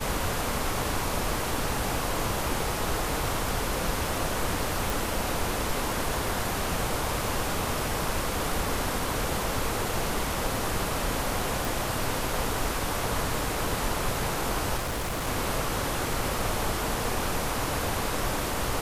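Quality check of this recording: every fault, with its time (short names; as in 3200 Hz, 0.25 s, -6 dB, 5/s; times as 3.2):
4.9 pop
11.65 pop
14.77–15.29 clipped -27 dBFS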